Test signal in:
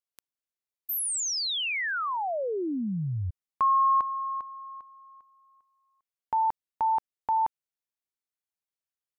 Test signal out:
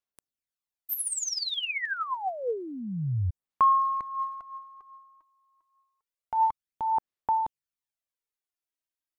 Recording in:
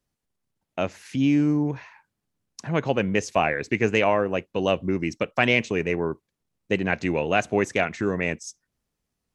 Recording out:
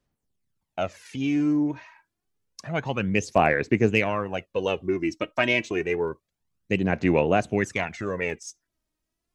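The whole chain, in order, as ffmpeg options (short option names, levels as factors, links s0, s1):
-af "aphaser=in_gain=1:out_gain=1:delay=3.2:decay=0.59:speed=0.28:type=sinusoidal,aeval=exprs='0.708*(cos(1*acos(clip(val(0)/0.708,-1,1)))-cos(1*PI/2))+0.02*(cos(3*acos(clip(val(0)/0.708,-1,1)))-cos(3*PI/2))':c=same,volume=0.708"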